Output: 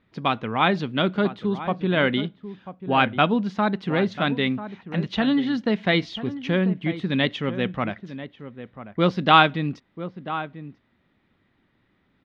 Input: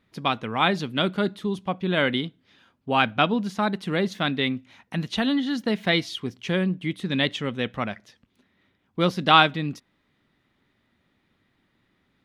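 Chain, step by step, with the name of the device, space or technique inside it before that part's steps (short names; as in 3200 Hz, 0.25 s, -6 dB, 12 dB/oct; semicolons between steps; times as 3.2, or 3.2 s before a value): shout across a valley (air absorption 180 m; outdoor echo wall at 170 m, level -12 dB); gain +2.5 dB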